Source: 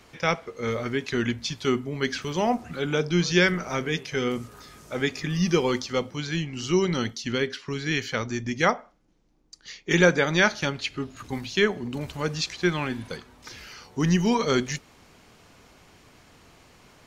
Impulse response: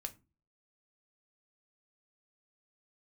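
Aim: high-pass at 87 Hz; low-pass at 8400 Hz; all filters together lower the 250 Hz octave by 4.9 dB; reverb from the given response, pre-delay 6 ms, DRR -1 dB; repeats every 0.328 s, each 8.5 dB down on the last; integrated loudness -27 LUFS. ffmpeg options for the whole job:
-filter_complex "[0:a]highpass=87,lowpass=8.4k,equalizer=f=250:t=o:g=-7.5,aecho=1:1:328|656|984|1312:0.376|0.143|0.0543|0.0206,asplit=2[a][b];[1:a]atrim=start_sample=2205,adelay=6[c];[b][c]afir=irnorm=-1:irlink=0,volume=3.5dB[d];[a][d]amix=inputs=2:normalize=0,volume=-3.5dB"

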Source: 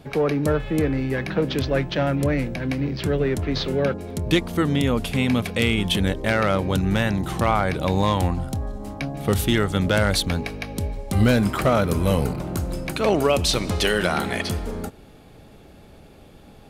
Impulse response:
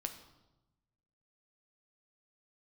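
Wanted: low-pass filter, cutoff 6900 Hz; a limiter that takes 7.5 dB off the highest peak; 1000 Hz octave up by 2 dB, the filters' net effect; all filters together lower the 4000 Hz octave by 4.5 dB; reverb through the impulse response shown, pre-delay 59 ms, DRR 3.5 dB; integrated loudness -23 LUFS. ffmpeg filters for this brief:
-filter_complex "[0:a]lowpass=6.9k,equalizer=f=1k:t=o:g=3,equalizer=f=4k:t=o:g=-5.5,alimiter=limit=-14dB:level=0:latency=1,asplit=2[a][b];[1:a]atrim=start_sample=2205,adelay=59[c];[b][c]afir=irnorm=-1:irlink=0,volume=-2.5dB[d];[a][d]amix=inputs=2:normalize=0,volume=0.5dB"

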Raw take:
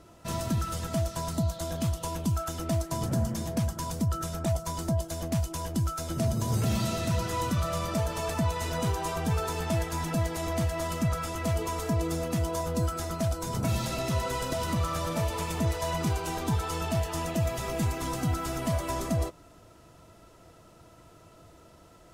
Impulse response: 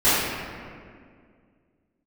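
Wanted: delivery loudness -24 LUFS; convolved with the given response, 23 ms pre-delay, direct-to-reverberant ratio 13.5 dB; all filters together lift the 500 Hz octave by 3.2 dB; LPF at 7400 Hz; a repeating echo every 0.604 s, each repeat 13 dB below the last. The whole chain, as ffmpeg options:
-filter_complex "[0:a]lowpass=7.4k,equalizer=f=500:t=o:g=4.5,aecho=1:1:604|1208|1812:0.224|0.0493|0.0108,asplit=2[a][b];[1:a]atrim=start_sample=2205,adelay=23[c];[b][c]afir=irnorm=-1:irlink=0,volume=-34.5dB[d];[a][d]amix=inputs=2:normalize=0,volume=5dB"

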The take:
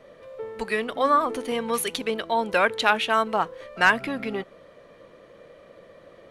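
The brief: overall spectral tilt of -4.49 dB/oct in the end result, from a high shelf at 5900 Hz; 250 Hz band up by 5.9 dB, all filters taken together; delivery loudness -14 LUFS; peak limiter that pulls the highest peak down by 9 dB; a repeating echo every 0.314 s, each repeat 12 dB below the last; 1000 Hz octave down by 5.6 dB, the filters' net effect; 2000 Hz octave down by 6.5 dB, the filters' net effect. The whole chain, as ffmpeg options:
-af "equalizer=f=250:t=o:g=7,equalizer=f=1k:t=o:g=-5.5,equalizer=f=2k:t=o:g=-6.5,highshelf=f=5.9k:g=-3.5,alimiter=limit=-20dB:level=0:latency=1,aecho=1:1:314|628|942:0.251|0.0628|0.0157,volume=16dB"

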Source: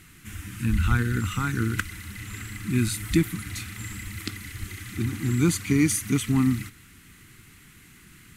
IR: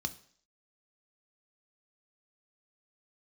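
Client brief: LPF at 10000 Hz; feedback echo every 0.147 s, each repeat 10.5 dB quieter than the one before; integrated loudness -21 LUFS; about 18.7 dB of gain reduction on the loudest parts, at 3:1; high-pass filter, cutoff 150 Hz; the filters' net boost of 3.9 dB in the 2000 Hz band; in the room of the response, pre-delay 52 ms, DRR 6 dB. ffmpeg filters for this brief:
-filter_complex "[0:a]highpass=150,lowpass=10k,equalizer=f=2k:t=o:g=5,acompressor=threshold=-43dB:ratio=3,aecho=1:1:147|294|441:0.299|0.0896|0.0269,asplit=2[a][b];[1:a]atrim=start_sample=2205,adelay=52[c];[b][c]afir=irnorm=-1:irlink=0,volume=-7.5dB[d];[a][d]amix=inputs=2:normalize=0,volume=19.5dB"

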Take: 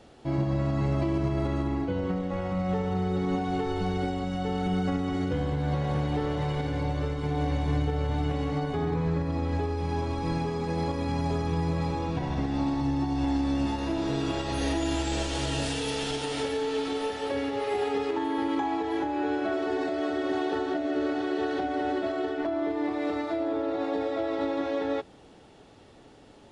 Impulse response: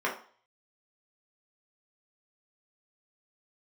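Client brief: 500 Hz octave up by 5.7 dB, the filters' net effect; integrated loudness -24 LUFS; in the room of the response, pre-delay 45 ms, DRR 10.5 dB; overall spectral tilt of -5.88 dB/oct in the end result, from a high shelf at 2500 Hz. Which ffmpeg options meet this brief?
-filter_complex "[0:a]equalizer=f=500:t=o:g=7.5,highshelf=f=2.5k:g=-5.5,asplit=2[a][b];[1:a]atrim=start_sample=2205,adelay=45[c];[b][c]afir=irnorm=-1:irlink=0,volume=-21dB[d];[a][d]amix=inputs=2:normalize=0,volume=2.5dB"

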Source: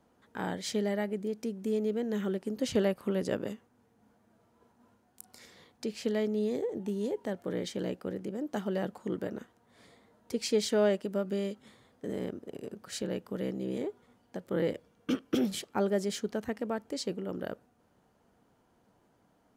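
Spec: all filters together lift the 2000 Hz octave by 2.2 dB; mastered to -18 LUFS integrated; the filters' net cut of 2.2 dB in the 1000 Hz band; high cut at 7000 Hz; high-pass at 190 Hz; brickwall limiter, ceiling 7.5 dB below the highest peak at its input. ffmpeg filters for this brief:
-af "highpass=190,lowpass=7k,equalizer=f=1k:t=o:g=-4,equalizer=f=2k:t=o:g=4,volume=18.5dB,alimiter=limit=-6dB:level=0:latency=1"

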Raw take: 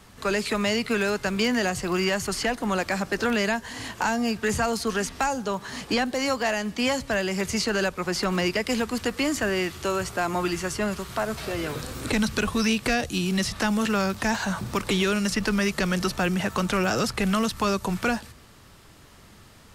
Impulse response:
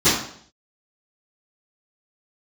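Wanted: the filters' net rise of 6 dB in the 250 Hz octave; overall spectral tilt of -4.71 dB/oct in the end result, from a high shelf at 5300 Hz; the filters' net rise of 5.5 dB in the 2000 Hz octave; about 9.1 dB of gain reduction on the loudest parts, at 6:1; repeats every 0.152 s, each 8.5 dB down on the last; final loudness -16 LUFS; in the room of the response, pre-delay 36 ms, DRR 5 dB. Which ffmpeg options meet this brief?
-filter_complex "[0:a]equalizer=f=250:t=o:g=7.5,equalizer=f=2k:t=o:g=6.5,highshelf=f=5.3k:g=3,acompressor=threshold=-25dB:ratio=6,aecho=1:1:152|304|456|608:0.376|0.143|0.0543|0.0206,asplit=2[a][b];[1:a]atrim=start_sample=2205,adelay=36[c];[b][c]afir=irnorm=-1:irlink=0,volume=-26dB[d];[a][d]amix=inputs=2:normalize=0,volume=9.5dB"

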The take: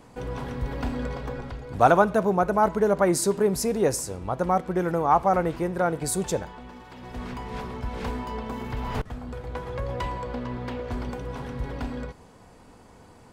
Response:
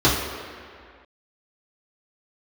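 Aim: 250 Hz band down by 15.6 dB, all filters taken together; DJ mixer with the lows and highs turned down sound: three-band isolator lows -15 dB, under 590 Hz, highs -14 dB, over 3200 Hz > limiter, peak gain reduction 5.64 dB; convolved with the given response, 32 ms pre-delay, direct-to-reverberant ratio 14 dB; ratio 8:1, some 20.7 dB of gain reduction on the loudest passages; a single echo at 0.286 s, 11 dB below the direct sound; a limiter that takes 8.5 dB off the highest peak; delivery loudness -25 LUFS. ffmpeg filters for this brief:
-filter_complex "[0:a]equalizer=f=250:t=o:g=-3.5,acompressor=threshold=-35dB:ratio=8,alimiter=level_in=8dB:limit=-24dB:level=0:latency=1,volume=-8dB,aecho=1:1:286:0.282,asplit=2[a][b];[1:a]atrim=start_sample=2205,adelay=32[c];[b][c]afir=irnorm=-1:irlink=0,volume=-35dB[d];[a][d]amix=inputs=2:normalize=0,acrossover=split=590 3200:gain=0.178 1 0.2[e][f][g];[e][f][g]amix=inputs=3:normalize=0,volume=23dB,alimiter=limit=-13.5dB:level=0:latency=1"

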